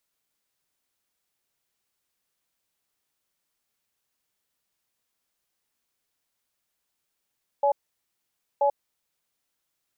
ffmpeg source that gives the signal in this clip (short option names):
-f lavfi -i "aevalsrc='0.0891*(sin(2*PI*568*t)+sin(2*PI*844*t))*clip(min(mod(t,0.98),0.09-mod(t,0.98))/0.005,0,1)':d=1.68:s=44100"